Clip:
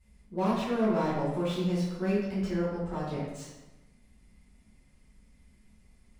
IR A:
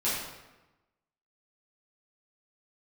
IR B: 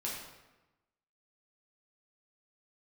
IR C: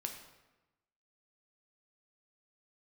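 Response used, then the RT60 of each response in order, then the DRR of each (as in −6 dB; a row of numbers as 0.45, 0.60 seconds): A; 1.1, 1.1, 1.1 seconds; −11.0, −5.5, 3.0 decibels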